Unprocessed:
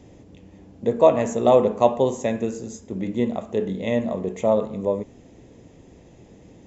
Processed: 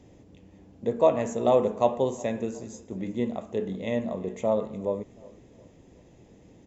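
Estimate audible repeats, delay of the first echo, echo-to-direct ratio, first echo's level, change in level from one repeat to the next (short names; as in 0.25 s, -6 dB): 2, 0.364 s, -21.5 dB, -22.5 dB, -7.5 dB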